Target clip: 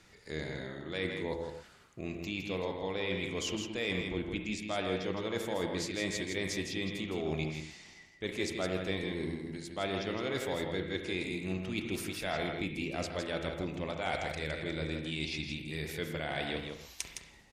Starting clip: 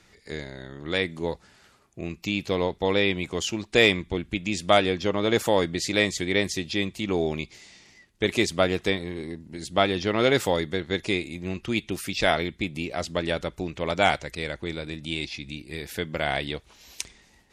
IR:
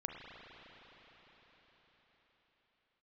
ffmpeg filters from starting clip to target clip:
-filter_complex "[0:a]areverse,acompressor=threshold=-30dB:ratio=6,areverse,aecho=1:1:162:0.501[link_01];[1:a]atrim=start_sample=2205,atrim=end_sample=6174[link_02];[link_01][link_02]afir=irnorm=-1:irlink=0"

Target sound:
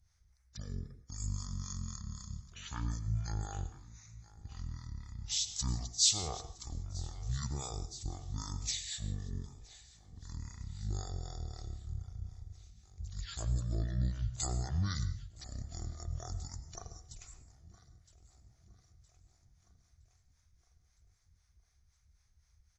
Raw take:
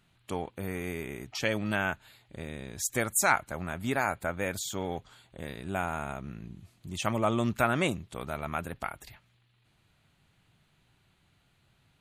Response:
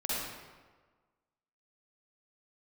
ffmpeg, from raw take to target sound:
-filter_complex "[0:a]firequalizer=gain_entry='entry(120,0);entry(580,-22);entry(12000,5)':delay=0.05:min_phase=1,aecho=1:1:508|1016|1524|2032|2540:0.1|0.059|0.0348|0.0205|0.0121,acrossover=split=930[link_01][link_02];[link_01]aeval=exprs='val(0)*(1-0.7/2+0.7/2*cos(2*PI*7.3*n/s))':channel_layout=same[link_03];[link_02]aeval=exprs='val(0)*(1-0.7/2-0.7/2*cos(2*PI*7.3*n/s))':channel_layout=same[link_04];[link_03][link_04]amix=inputs=2:normalize=0,asplit=2[link_05][link_06];[1:a]atrim=start_sample=2205,atrim=end_sample=4410[link_07];[link_06][link_07]afir=irnorm=-1:irlink=0,volume=-13dB[link_08];[link_05][link_08]amix=inputs=2:normalize=0,asetrate=23241,aresample=44100,volume=3dB"

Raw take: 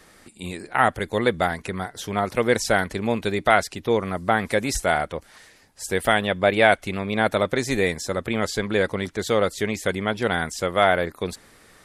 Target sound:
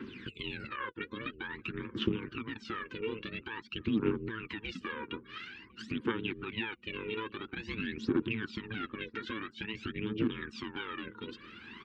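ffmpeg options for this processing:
ffmpeg -i in.wav -filter_complex "[0:a]asplit=2[link_01][link_02];[link_02]acrusher=bits=4:dc=4:mix=0:aa=0.000001,volume=-9dB[link_03];[link_01][link_03]amix=inputs=2:normalize=0,asettb=1/sr,asplit=3[link_04][link_05][link_06];[link_04]atrim=end=9.124[link_07];[link_05]atrim=start=9.12:end=9.53,asetpts=PTS-STARTPTS,afade=type=in:duration=0.004:curve=qsin,afade=type=out:start_time=0.406:duration=0.004:curve=qsin,equalizer=frequency=1700:width=2.3:gain=10.5[link_08];[link_06]atrim=start=9.526[link_09];[link_07][link_08]acrossfade=duration=0.004:curve1=hsin:curve2=qsin[link_10];[link_10][link_09]acrossfade=duration=0.004:curve1=qsin:curve2=hsin,acompressor=threshold=-30dB:ratio=20,alimiter=level_in=4.5dB:limit=-24dB:level=0:latency=1:release=211,volume=-4.5dB,aeval=exprs='val(0)*sin(2*PI*220*n/s)':channel_layout=same,afftfilt=real='re*gte(hypot(re,im),0.000794)':imag='im*gte(hypot(re,im),0.000794)':win_size=1024:overlap=0.75,aphaser=in_gain=1:out_gain=1:delay=2.2:decay=0.75:speed=0.49:type=triangular,asuperstop=centerf=670:order=4:qfactor=0.89,highpass=120,equalizer=frequency=150:width_type=q:width=4:gain=-6,equalizer=frequency=230:width_type=q:width=4:gain=6,equalizer=frequency=350:width_type=q:width=4:gain=7,equalizer=frequency=650:width_type=q:width=4:gain=7,equalizer=frequency=2000:width_type=q:width=4:gain=-6,equalizer=frequency=2800:width_type=q:width=4:gain=8,lowpass=frequency=3300:width=0.5412,lowpass=frequency=3300:width=1.3066,asplit=2[link_11][link_12];[link_12]adelay=1054,lowpass=frequency=880:poles=1,volume=-20dB,asplit=2[link_13][link_14];[link_14]adelay=1054,lowpass=frequency=880:poles=1,volume=0.32,asplit=2[link_15][link_16];[link_16]adelay=1054,lowpass=frequency=880:poles=1,volume=0.32[link_17];[link_11][link_13][link_15][link_17]amix=inputs=4:normalize=0,volume=6dB" out.wav

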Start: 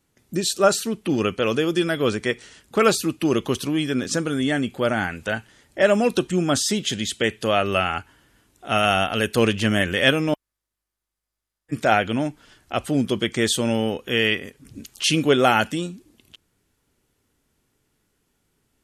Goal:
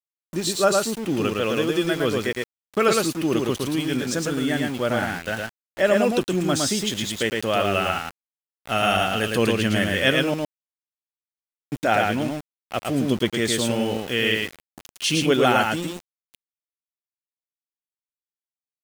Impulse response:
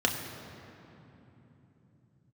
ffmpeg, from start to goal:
-af "aecho=1:1:111:0.708,aeval=exprs='val(0)*gte(abs(val(0)),0.0316)':channel_layout=same,volume=-2.5dB"

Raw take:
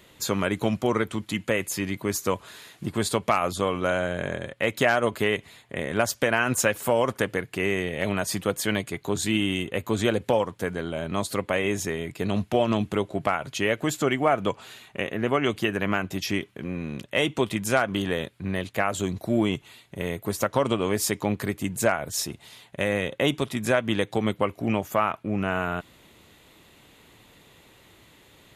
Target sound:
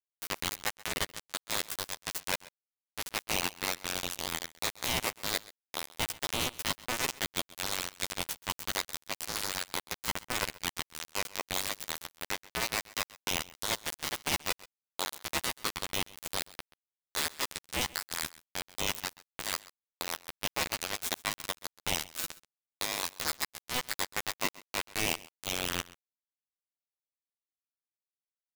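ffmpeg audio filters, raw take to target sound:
ffmpeg -i in.wav -filter_complex "[0:a]aeval=exprs='if(lt(val(0),0),0.708*val(0),val(0))':channel_layout=same,highpass=560,areverse,acompressor=threshold=-37dB:ratio=4,areverse,acrusher=bits=4:mix=0:aa=0.000001,asplit=2[link_01][link_02];[link_02]adelay=12,volume=-3dB[link_03];[link_01][link_03]amix=inputs=2:normalize=0,aecho=1:1:131:0.0944,aeval=exprs='val(0)*sgn(sin(2*PI*1500*n/s))':channel_layout=same,volume=4.5dB" out.wav

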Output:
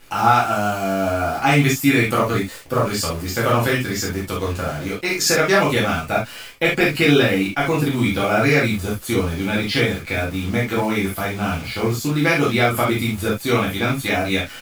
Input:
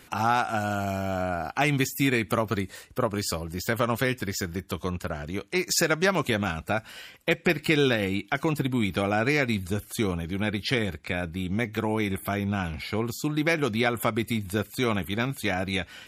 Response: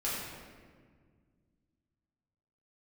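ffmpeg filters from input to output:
-filter_complex "[0:a]atempo=1.1,acrusher=bits=8:dc=4:mix=0:aa=0.000001[link_01];[1:a]atrim=start_sample=2205,atrim=end_sample=3528[link_02];[link_01][link_02]afir=irnorm=-1:irlink=0,volume=4.5dB"

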